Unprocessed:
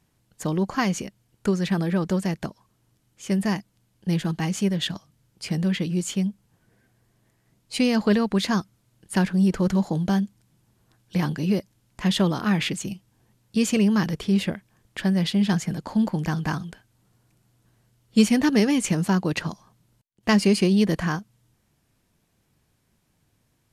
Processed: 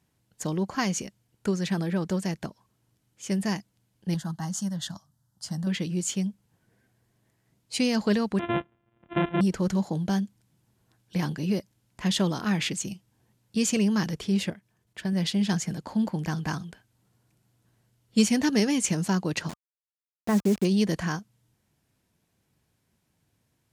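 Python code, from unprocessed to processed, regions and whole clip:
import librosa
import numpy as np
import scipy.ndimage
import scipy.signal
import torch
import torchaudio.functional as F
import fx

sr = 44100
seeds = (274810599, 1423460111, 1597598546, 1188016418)

y = fx.chain(x, sr, fx.highpass(hz=60.0, slope=12),
    fx.fixed_phaser(hz=1000.0, stages=4), at=(4.14, 5.67))
y = fx.chain(y, sr, fx.sample_sort(block=128),
    fx.lowpass(hz=2600.0, slope=12),
    fx.resample_bad(factor=6, down='none', up='filtered'), at=(8.39, 9.41))
y = fx.chain(y, sr, fx.level_steps(step_db=11),
    fx.notch_comb(f0_hz=270.0), at=(14.5, 15.13))
y = fx.chain(y, sr, fx.gaussian_blur(sigma=5.3),
    fx.quant_dither(seeds[0], bits=6, dither='none'), at=(19.49, 20.65))
y = fx.dynamic_eq(y, sr, hz=6500.0, q=1.1, threshold_db=-47.0, ratio=4.0, max_db=7)
y = scipy.signal.sosfilt(scipy.signal.butter(2, 48.0, 'highpass', fs=sr, output='sos'), y)
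y = fx.notch(y, sr, hz=1200.0, q=23.0)
y = F.gain(torch.from_numpy(y), -4.0).numpy()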